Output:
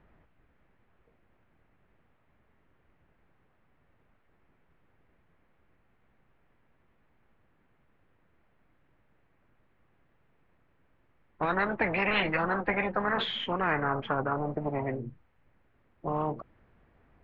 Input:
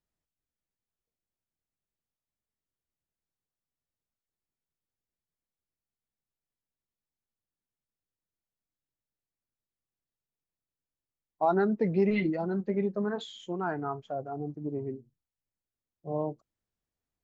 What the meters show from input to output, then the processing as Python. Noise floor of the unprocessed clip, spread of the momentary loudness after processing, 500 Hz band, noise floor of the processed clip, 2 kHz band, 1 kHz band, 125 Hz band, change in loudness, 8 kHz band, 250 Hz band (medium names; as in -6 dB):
under -85 dBFS, 9 LU, -2.0 dB, -69 dBFS, +11.5 dB, +4.5 dB, 0.0 dB, +1.0 dB, no reading, -3.5 dB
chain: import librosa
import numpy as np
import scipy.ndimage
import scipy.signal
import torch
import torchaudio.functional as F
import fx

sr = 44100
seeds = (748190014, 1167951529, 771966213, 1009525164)

y = scipy.signal.sosfilt(scipy.signal.butter(4, 2200.0, 'lowpass', fs=sr, output='sos'), x)
y = fx.dynamic_eq(y, sr, hz=200.0, q=2.6, threshold_db=-43.0, ratio=4.0, max_db=5)
y = fx.spectral_comp(y, sr, ratio=10.0)